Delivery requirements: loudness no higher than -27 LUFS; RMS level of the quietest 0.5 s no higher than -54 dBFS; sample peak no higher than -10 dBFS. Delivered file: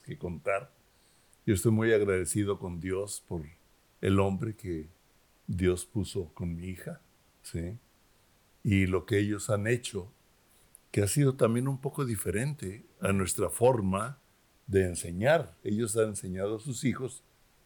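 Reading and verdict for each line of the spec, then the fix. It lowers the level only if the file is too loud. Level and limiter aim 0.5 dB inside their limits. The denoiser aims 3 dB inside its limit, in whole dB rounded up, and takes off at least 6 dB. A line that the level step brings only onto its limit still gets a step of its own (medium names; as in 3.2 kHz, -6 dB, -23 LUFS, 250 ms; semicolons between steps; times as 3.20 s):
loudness -30.5 LUFS: pass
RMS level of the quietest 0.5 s -65 dBFS: pass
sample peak -12.5 dBFS: pass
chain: none needed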